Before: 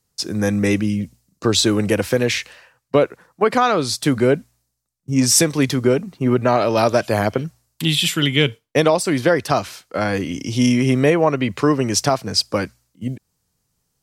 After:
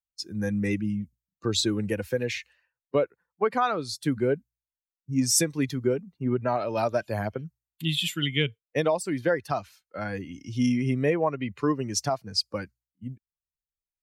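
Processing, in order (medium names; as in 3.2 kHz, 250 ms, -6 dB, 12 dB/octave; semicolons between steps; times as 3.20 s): expander on every frequency bin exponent 1.5; trim -6.5 dB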